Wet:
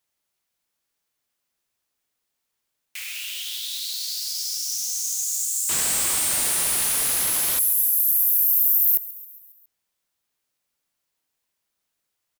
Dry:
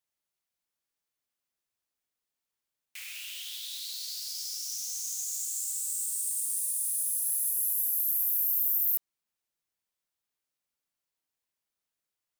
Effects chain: 5.69–7.59 s: Schmitt trigger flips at -43 dBFS; on a send: feedback delay 137 ms, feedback 58%, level -18 dB; on the sum: trim +8.5 dB

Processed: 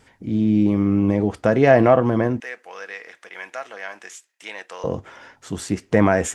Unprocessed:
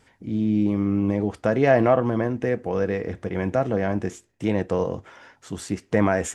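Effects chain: 2.40–4.84 s: high-pass 1.5 kHz 12 dB/octave; trim +4 dB

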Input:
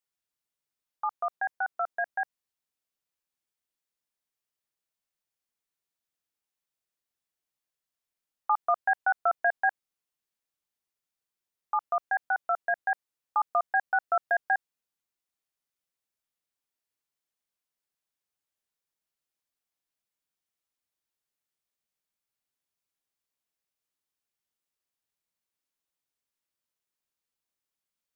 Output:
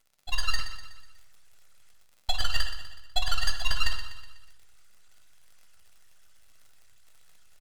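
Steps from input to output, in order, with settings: formants replaced by sine waves; low-pass that closes with the level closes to 1 kHz, closed at -23.5 dBFS; high-pass 640 Hz 12 dB/octave; peak limiter -23 dBFS, peak gain reduction 7.5 dB; reverse; upward compressor, threshold -37 dBFS; reverse; granular stretch 0.54×, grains 153 ms; full-wave rectifier; crackle 28 per s -50 dBFS; feedback delay 247 ms, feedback 51%, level -11 dB; on a send at -4 dB: reverberation RT60 1.3 s, pre-delay 3 ms; on the sum: speed mistake 7.5 ips tape played at 15 ips; trim +8 dB

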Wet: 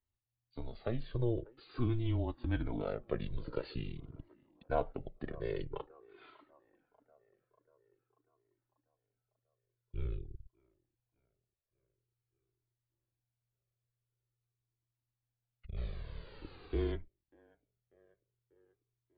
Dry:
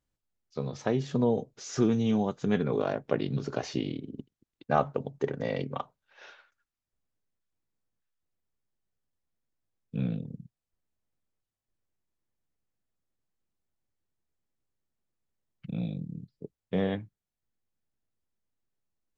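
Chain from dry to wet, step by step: feedback echo behind a band-pass 592 ms, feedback 58%, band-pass 930 Hz, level -22.5 dB; frequency shift -120 Hz; 15.76–16.91 s: added noise pink -46 dBFS; brick-wall FIR low-pass 4.8 kHz; peaking EQ 410 Hz +5 dB 0.99 oct; Shepard-style flanger falling 0.47 Hz; trim -4.5 dB

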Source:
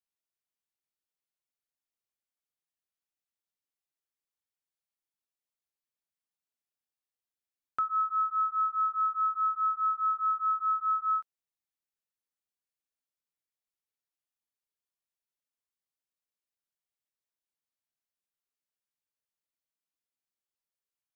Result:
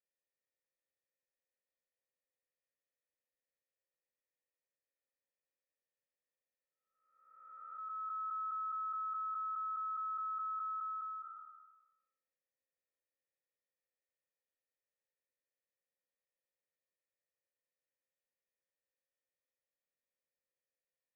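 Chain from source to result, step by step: spectral blur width 737 ms; cascade formant filter e; trim +14 dB

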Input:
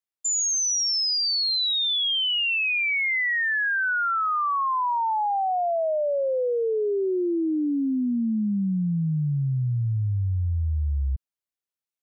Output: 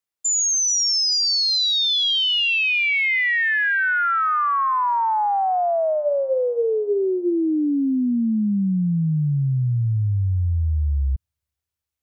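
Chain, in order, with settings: 5.93–7.32 s: hum notches 60/120/180/240/300/360/420/480/540/600 Hz; feedback echo behind a high-pass 432 ms, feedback 40%, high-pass 1.5 kHz, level -15 dB; trim +4 dB

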